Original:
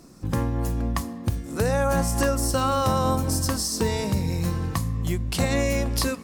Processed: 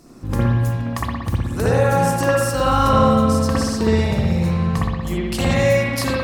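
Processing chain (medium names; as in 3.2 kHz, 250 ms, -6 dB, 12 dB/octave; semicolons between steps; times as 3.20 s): 2.89–5.07 s: treble shelf 9.8 kHz -12 dB; spring tank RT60 1.3 s, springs 59 ms, chirp 30 ms, DRR -6.5 dB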